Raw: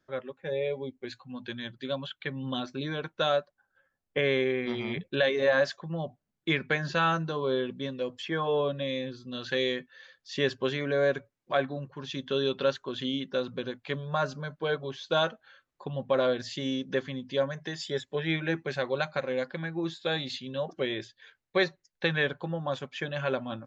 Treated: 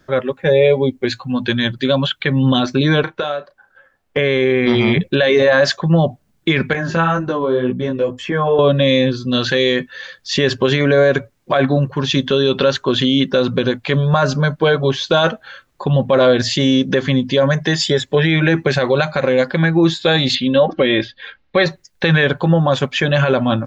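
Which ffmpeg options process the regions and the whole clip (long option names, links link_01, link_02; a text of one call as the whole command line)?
ffmpeg -i in.wav -filter_complex "[0:a]asettb=1/sr,asplit=3[link_01][link_02][link_03];[link_01]atrim=end=3.034[link_04];[link_02]atrim=start=3.03:end=4.17,asetpts=PTS-STARTPTS,afade=type=in:duration=0.004:curve=qsin,afade=type=out:start_time=1.136:duration=0.004:curve=qsin,bass=frequency=250:gain=-9,treble=frequency=4000:gain=-9,acompressor=threshold=-36dB:ratio=16:attack=3.2:release=140:knee=1:detection=peak,asplit=2[link_05][link_06];[link_06]adelay=34,volume=-11.5dB[link_07];[link_05][link_07]amix=inputs=2:normalize=0,atrim=end_sample=50274[link_08];[link_03]atrim=start=4.166[link_09];[link_04][link_08]acrossfade=duration=0.004:curve1=hsin:curve2=qsin[link_10];[link_10][link_09]acrossfade=duration=0.004:curve1=qsin:curve2=hsin,asettb=1/sr,asplit=3[link_11][link_12][link_13];[link_11]atrim=end=6.734[link_14];[link_12]atrim=start=6.73:end=8.59,asetpts=PTS-STARTPTS,afade=type=in:duration=0.004:curve=qsin,afade=type=out:start_time=1.856:duration=0.004:curve=qsin,equalizer=frequency=4100:width_type=o:width=1.2:gain=-12,acompressor=threshold=-31dB:ratio=3:attack=3.2:release=140:knee=1:detection=peak,flanger=delay=15.5:depth=2.8:speed=2[link_15];[link_13]atrim=start=8.586[link_16];[link_14][link_15]acrossfade=duration=0.004:curve1=hsin:curve2=qsin[link_17];[link_17][link_16]acrossfade=duration=0.004:curve1=qsin:curve2=hsin,asettb=1/sr,asplit=3[link_18][link_19][link_20];[link_18]atrim=end=20.354[link_21];[link_19]atrim=start=20.35:end=21.66,asetpts=PTS-STARTPTS,afade=type=in:duration=0.004:curve=qsin,afade=type=out:start_time=1.306:duration=0.004:curve=qsin,lowpass=frequency=4100:width=0.5412,lowpass=frequency=4100:width=1.3066,aecho=1:1:3.7:0.49,atrim=end_sample=57771[link_22];[link_20]atrim=start=21.656[link_23];[link_21][link_22]acrossfade=duration=0.004:curve1=hsin:curve2=qsin[link_24];[link_24][link_23]acrossfade=duration=0.004:curve1=qsin:curve2=hsin,lowshelf=frequency=130:gain=6.5,alimiter=level_in=23dB:limit=-1dB:release=50:level=0:latency=1,volume=-3.5dB" out.wav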